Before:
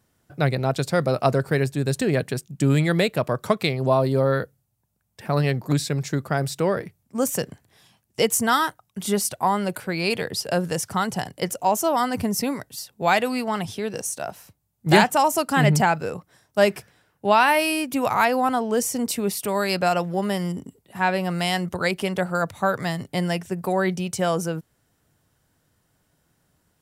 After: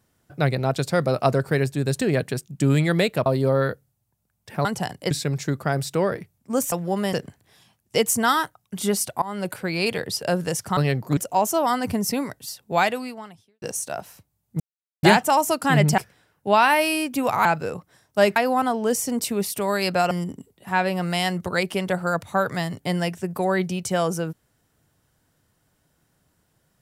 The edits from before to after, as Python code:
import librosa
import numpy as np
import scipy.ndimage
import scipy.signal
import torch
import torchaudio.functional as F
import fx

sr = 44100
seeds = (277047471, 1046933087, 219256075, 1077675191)

y = fx.edit(x, sr, fx.cut(start_s=3.26, length_s=0.71),
    fx.swap(start_s=5.36, length_s=0.4, other_s=11.01, other_length_s=0.46),
    fx.fade_in_from(start_s=9.46, length_s=0.27, floor_db=-21.5),
    fx.fade_out_span(start_s=13.08, length_s=0.84, curve='qua'),
    fx.insert_silence(at_s=14.9, length_s=0.43),
    fx.move(start_s=15.85, length_s=0.91, to_s=18.23),
    fx.move(start_s=19.98, length_s=0.41, to_s=7.37), tone=tone)